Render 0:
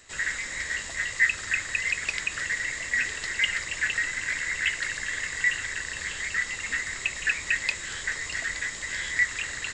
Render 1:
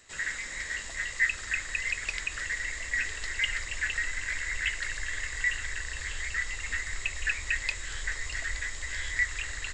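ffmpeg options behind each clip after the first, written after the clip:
ffmpeg -i in.wav -af "asubboost=boost=10.5:cutoff=52,volume=-4dB" out.wav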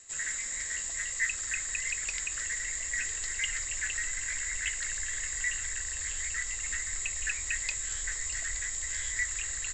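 ffmpeg -i in.wav -af "lowpass=frequency=7400:width_type=q:width=7.4,volume=-5.5dB" out.wav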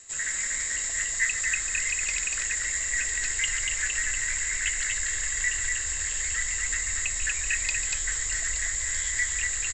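ffmpeg -i in.wav -af "aecho=1:1:142.9|239.1:0.282|0.631,volume=4dB" out.wav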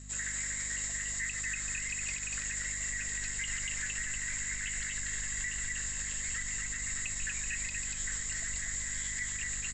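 ffmpeg -i in.wav -af "alimiter=limit=-22dB:level=0:latency=1:release=104,flanger=delay=2.5:depth=5.7:regen=-65:speed=1.4:shape=triangular,aeval=exprs='val(0)+0.00447*(sin(2*PI*50*n/s)+sin(2*PI*2*50*n/s)/2+sin(2*PI*3*50*n/s)/3+sin(2*PI*4*50*n/s)/4+sin(2*PI*5*50*n/s)/5)':channel_layout=same" out.wav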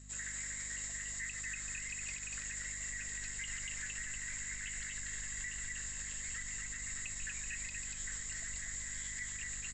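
ffmpeg -i in.wav -af "aresample=22050,aresample=44100,volume=-6dB" out.wav

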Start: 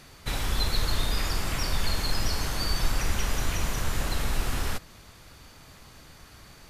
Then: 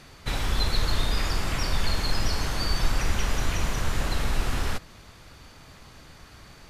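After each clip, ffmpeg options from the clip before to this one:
ffmpeg -i in.wav -af "highshelf=frequency=9400:gain=-10,volume=2dB" out.wav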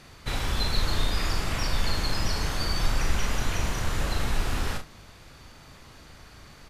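ffmpeg -i in.wav -af "aecho=1:1:38|73:0.501|0.133,volume=-1.5dB" out.wav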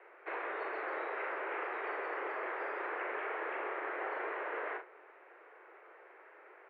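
ffmpeg -i in.wav -af "highpass=frequency=180:width_type=q:width=0.5412,highpass=frequency=180:width_type=q:width=1.307,lowpass=frequency=2000:width_type=q:width=0.5176,lowpass=frequency=2000:width_type=q:width=0.7071,lowpass=frequency=2000:width_type=q:width=1.932,afreqshift=210,volume=-3.5dB" out.wav

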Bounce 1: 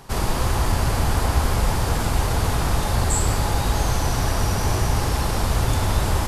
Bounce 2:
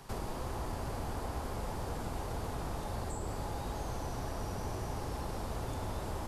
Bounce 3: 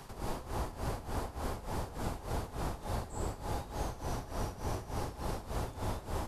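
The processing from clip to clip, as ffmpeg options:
ffmpeg -i in.wav -filter_complex "[0:a]acrossover=split=200|980[link_01][link_02][link_03];[link_01]acompressor=threshold=-32dB:ratio=4[link_04];[link_02]acompressor=threshold=-33dB:ratio=4[link_05];[link_03]acompressor=threshold=-44dB:ratio=4[link_06];[link_04][link_05][link_06]amix=inputs=3:normalize=0,volume=-7.5dB" out.wav
ffmpeg -i in.wav -af "tremolo=f=3.4:d=0.81,volume=3.5dB" out.wav

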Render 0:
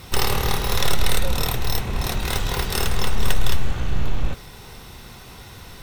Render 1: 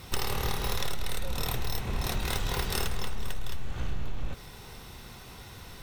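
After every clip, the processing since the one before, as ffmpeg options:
ffmpeg -i in.wav -af "acompressor=threshold=-19dB:ratio=10,volume=-5dB" out.wav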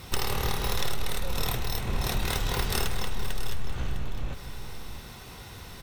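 ffmpeg -i in.wav -af "aecho=1:1:654:0.266,volume=2dB" out.wav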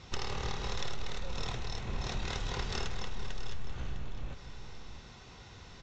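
ffmpeg -i in.wav -af "aresample=16000,aresample=44100,volume=-7.5dB" out.wav

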